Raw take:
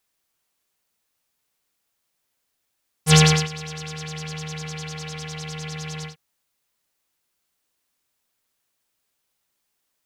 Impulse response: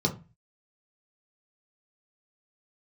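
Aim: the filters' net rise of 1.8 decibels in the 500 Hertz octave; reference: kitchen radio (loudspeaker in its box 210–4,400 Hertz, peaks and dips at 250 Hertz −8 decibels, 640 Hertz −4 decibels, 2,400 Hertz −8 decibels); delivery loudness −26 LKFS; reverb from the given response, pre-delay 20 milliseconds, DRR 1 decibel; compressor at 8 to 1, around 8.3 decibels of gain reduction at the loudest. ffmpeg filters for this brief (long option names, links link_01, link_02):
-filter_complex "[0:a]equalizer=frequency=500:width_type=o:gain=3,acompressor=threshold=-18dB:ratio=8,asplit=2[link_01][link_02];[1:a]atrim=start_sample=2205,adelay=20[link_03];[link_02][link_03]afir=irnorm=-1:irlink=0,volume=-10dB[link_04];[link_01][link_04]amix=inputs=2:normalize=0,highpass=210,equalizer=frequency=250:width_type=q:width=4:gain=-8,equalizer=frequency=640:width_type=q:width=4:gain=-4,equalizer=frequency=2400:width_type=q:width=4:gain=-8,lowpass=frequency=4400:width=0.5412,lowpass=frequency=4400:width=1.3066,volume=-2dB"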